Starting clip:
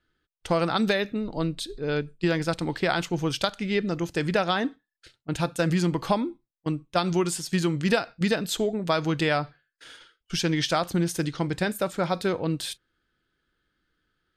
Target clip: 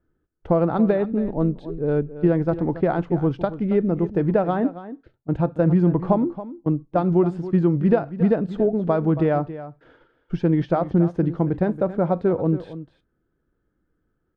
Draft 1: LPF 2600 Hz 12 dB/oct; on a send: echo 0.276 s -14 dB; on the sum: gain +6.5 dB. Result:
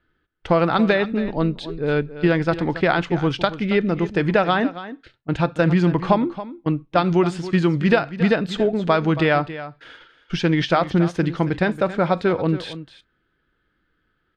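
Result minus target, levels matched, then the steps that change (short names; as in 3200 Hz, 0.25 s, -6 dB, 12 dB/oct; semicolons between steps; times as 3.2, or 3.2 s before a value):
2000 Hz band +12.5 dB
change: LPF 730 Hz 12 dB/oct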